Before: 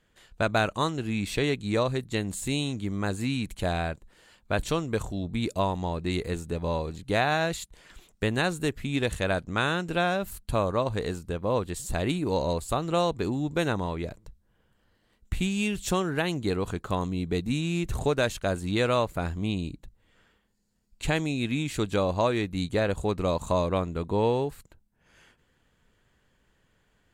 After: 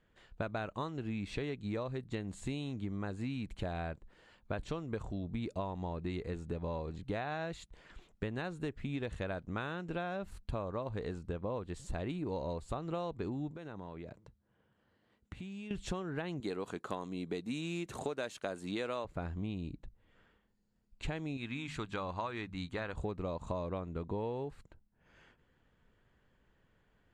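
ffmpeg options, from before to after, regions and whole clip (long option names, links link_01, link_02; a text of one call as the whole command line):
ffmpeg -i in.wav -filter_complex "[0:a]asettb=1/sr,asplit=3[link_01][link_02][link_03];[link_01]atrim=end=13.514[link_04];[link_02]atrim=start=13.51:end=15.71,asetpts=PTS-STARTPTS,afade=type=in:duration=0.004:curve=qsin,afade=type=out:start_time=2.196:duration=0.004:curve=qsin,highpass=100,acompressor=threshold=-39dB:ratio=6:attack=3.2:release=140:knee=1:detection=peak[link_05];[link_03]atrim=start=15.706[link_06];[link_04][link_05]acrossfade=duration=0.004:curve1=hsin:curve2=qsin[link_07];[link_07][link_06]acrossfade=duration=0.004:curve1=qsin:curve2=hsin,asettb=1/sr,asplit=3[link_08][link_09][link_10];[link_08]atrim=end=16.404[link_11];[link_09]atrim=start=16.4:end=19.05,asetpts=PTS-STARTPTS,afade=type=in:duration=0.004:curve=qsin,afade=type=out:start_time=2.646:duration=0.004:curve=qsin,highpass=230,aemphasis=mode=production:type=50fm[link_12];[link_10]atrim=start=19.046[link_13];[link_11][link_12]acrossfade=duration=0.004:curve1=hsin:curve2=qsin[link_14];[link_14][link_13]acrossfade=duration=0.004:curve1=qsin:curve2=hsin,asettb=1/sr,asplit=3[link_15][link_16][link_17];[link_15]atrim=end=21.374[link_18];[link_16]atrim=start=21.37:end=22.94,asetpts=PTS-STARTPTS,afade=type=in:duration=0.004:curve=qsin,afade=type=out:start_time=1.566:duration=0.004:curve=qsin,lowshelf=frequency=770:width_type=q:width=1.5:gain=-7,bandreject=frequency=50.56:width_type=h:width=4,bandreject=frequency=101.12:width_type=h:width=4,bandreject=frequency=151.68:width_type=h:width=4,bandreject=frequency=202.24:width_type=h:width=4,bandreject=frequency=252.8:width_type=h:width=4[link_19];[link_17]atrim=start=22.936[link_20];[link_18][link_19]acrossfade=duration=0.004:curve1=hsin:curve2=qsin[link_21];[link_21][link_20]acrossfade=duration=0.004:curve1=qsin:curve2=hsin,lowpass=10000,aemphasis=mode=reproduction:type=75fm,acompressor=threshold=-31dB:ratio=6,volume=-3.5dB" out.wav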